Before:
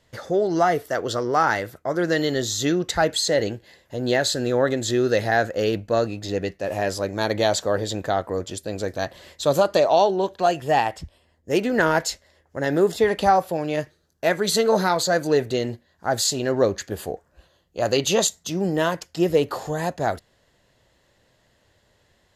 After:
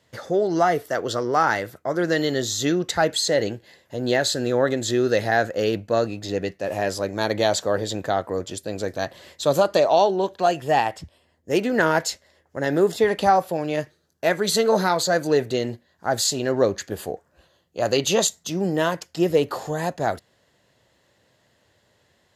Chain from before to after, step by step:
high-pass filter 89 Hz

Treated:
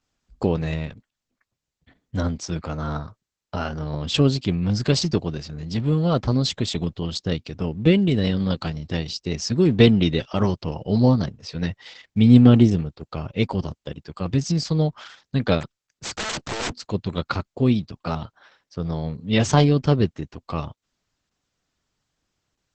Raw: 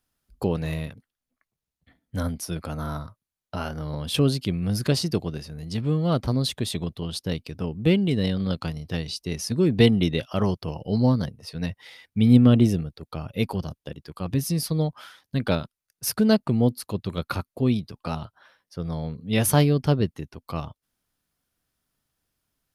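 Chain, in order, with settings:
0:15.61–0:16.75: wrap-around overflow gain 24.5 dB
level +3.5 dB
Opus 10 kbit/s 48,000 Hz

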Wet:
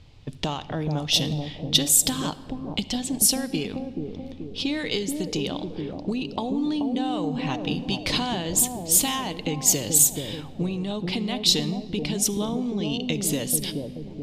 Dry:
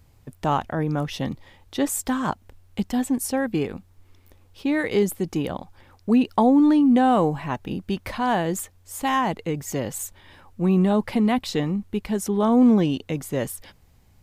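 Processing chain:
downward compressor 16 to 1, threshold −30 dBFS, peak gain reduction 18 dB
high shelf with overshoot 2,400 Hz +13 dB, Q 1.5
low-pass that shuts in the quiet parts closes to 2,200 Hz, open at −23.5 dBFS
bucket-brigade delay 431 ms, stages 2,048, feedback 54%, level −3.5 dB
convolution reverb RT60 1.9 s, pre-delay 7 ms, DRR 13 dB
level +5 dB

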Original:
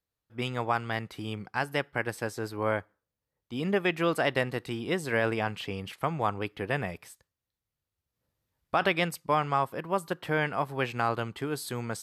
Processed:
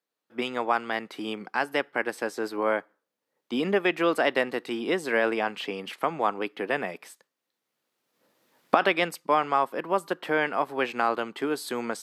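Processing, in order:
camcorder AGC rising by 9.8 dB per second
high-pass filter 230 Hz 24 dB per octave
high-shelf EQ 5,700 Hz −6.5 dB
level +3.5 dB

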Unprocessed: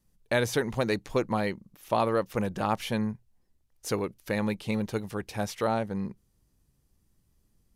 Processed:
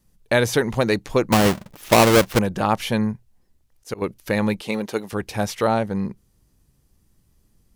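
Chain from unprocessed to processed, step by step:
0:01.32–0:02.39: each half-wave held at its own peak
0:02.90–0:04.02: volume swells 194 ms
0:04.61–0:05.13: high-pass filter 260 Hz 12 dB per octave
level +7.5 dB

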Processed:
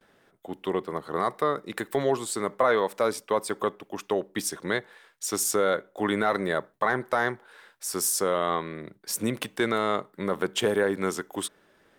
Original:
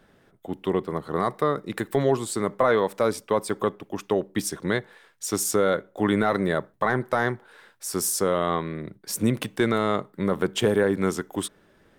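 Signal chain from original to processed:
noise gate with hold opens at −52 dBFS
low-shelf EQ 240 Hz −11.5 dB

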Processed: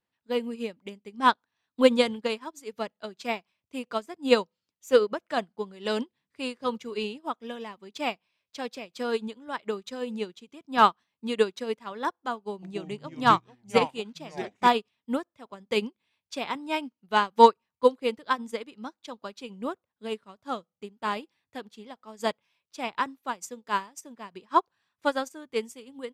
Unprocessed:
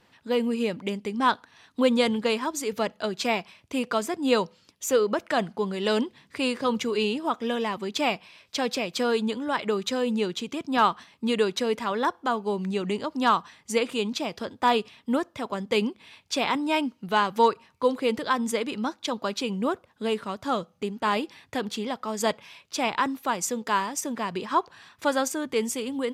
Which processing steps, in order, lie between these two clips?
0:12.36–0:14.67: delay with pitch and tempo change per echo 264 ms, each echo −4 semitones, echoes 2, each echo −6 dB
expander for the loud parts 2.5 to 1, over −37 dBFS
level +6.5 dB

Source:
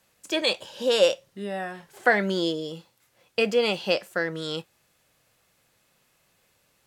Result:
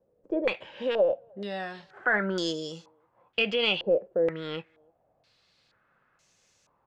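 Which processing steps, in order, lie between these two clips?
stylus tracing distortion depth 0.039 ms
brickwall limiter −16.5 dBFS, peak gain reduction 10 dB
far-end echo of a speakerphone 310 ms, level −29 dB
low-pass on a step sequencer 2.1 Hz 490–6,300 Hz
level −3.5 dB

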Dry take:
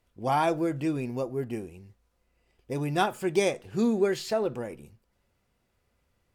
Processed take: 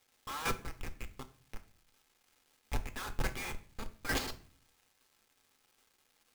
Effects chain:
Butterworth high-pass 1,000 Hz 72 dB per octave, from 0:04.26 2,800 Hz
comparator with hysteresis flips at −38 dBFS
square-wave tremolo 2.2 Hz, depth 65%, duty 20%
surface crackle 570 per second −67 dBFS
convolution reverb RT60 0.45 s, pre-delay 3 ms, DRR 7.5 dB
level +10 dB

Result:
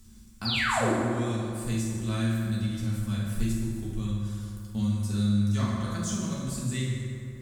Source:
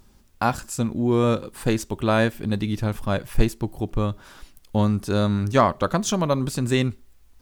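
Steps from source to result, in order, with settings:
guitar amp tone stack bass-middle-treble 6-0-2
sound drawn into the spectrogram fall, 0:00.45–0:00.93, 250–5,000 Hz −32 dBFS
parametric band 8,000 Hz +8.5 dB 0.8 octaves
convolution reverb RT60 2.1 s, pre-delay 5 ms, DRR −7 dB
multiband upward and downward compressor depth 40%

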